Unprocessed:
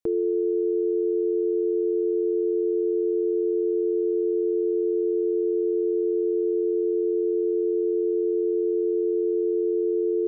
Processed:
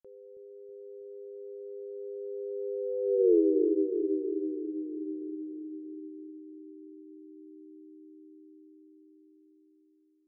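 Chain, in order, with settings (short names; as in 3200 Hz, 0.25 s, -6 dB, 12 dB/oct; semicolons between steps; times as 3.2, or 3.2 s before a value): ending faded out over 2.74 s; Doppler pass-by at 3.32, 45 m/s, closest 5.6 m; analogue delay 0.322 s, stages 1024, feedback 63%, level -5.5 dB; gain +2.5 dB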